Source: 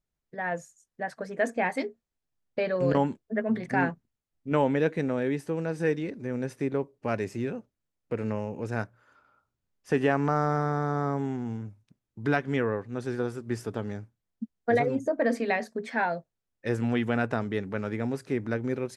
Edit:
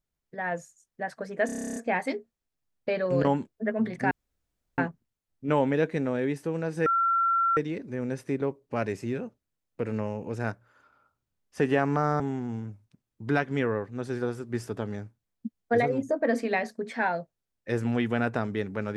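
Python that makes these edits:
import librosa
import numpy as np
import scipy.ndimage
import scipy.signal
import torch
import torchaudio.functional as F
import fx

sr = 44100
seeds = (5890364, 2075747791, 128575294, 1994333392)

y = fx.edit(x, sr, fx.stutter(start_s=1.46, slice_s=0.03, count=11),
    fx.insert_room_tone(at_s=3.81, length_s=0.67),
    fx.insert_tone(at_s=5.89, length_s=0.71, hz=1360.0, db=-21.0),
    fx.cut(start_s=10.52, length_s=0.65), tone=tone)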